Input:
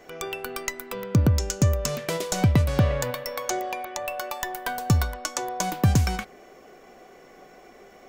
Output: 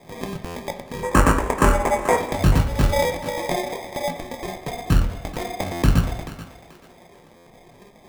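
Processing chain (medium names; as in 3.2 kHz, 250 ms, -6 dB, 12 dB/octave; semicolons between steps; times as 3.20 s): octave divider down 1 oct, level +4 dB; 2.92–4.09 s: peaking EQ 540 Hz +10 dB 0.55 oct; reverb removal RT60 1.4 s; in parallel at -3 dB: compression, threshold -24 dBFS, peak gain reduction 14 dB; on the sum: chorus 1.5 Hz, delay 18 ms, depth 7.1 ms; sample-and-hold 31×; 1.03–2.17 s: graphic EQ 125/250/500/1000/2000/4000/8000 Hz -9/+5/+7/+12/+8/-9/+12 dB; thinning echo 434 ms, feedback 28%, high-pass 300 Hz, level -12.5 dB; on a send at -6.5 dB: reverberation, pre-delay 3 ms; on the sum: buffer glitch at 0.45/5.72/7.36 s, samples 512, times 8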